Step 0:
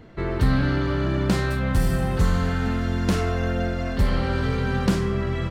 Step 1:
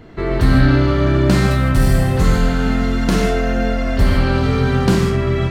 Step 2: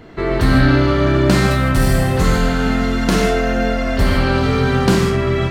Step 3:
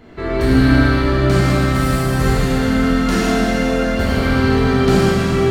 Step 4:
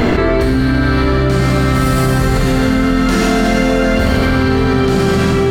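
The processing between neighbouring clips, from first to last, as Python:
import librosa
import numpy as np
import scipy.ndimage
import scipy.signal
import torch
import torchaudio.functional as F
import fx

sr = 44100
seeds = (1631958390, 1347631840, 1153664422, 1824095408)

y1 = fx.rev_gated(x, sr, seeds[0], gate_ms=180, shape='flat', drr_db=1.0)
y1 = y1 * librosa.db_to_amplitude(5.0)
y2 = fx.low_shelf(y1, sr, hz=210.0, db=-5.5)
y2 = y2 * librosa.db_to_amplitude(3.0)
y3 = fx.rider(y2, sr, range_db=10, speed_s=2.0)
y3 = fx.rev_plate(y3, sr, seeds[1], rt60_s=3.6, hf_ratio=0.85, predelay_ms=0, drr_db=-5.5)
y3 = y3 * librosa.db_to_amplitude(-7.5)
y4 = fx.env_flatten(y3, sr, amount_pct=100)
y4 = y4 * librosa.db_to_amplitude(-3.0)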